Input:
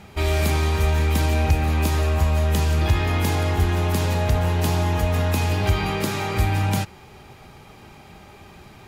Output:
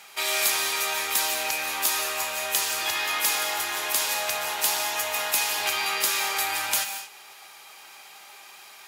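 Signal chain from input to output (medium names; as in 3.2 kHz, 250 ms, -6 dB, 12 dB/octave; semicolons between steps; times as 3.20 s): high-pass 960 Hz 12 dB/octave; treble shelf 4.4 kHz +11.5 dB; gated-style reverb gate 260 ms flat, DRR 6.5 dB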